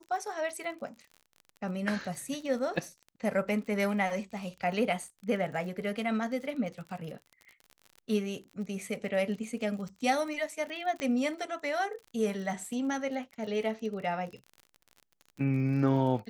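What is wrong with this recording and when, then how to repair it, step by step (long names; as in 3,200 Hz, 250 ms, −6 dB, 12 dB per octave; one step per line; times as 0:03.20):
surface crackle 42 per second −40 dBFS
0:11.00: click −22 dBFS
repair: click removal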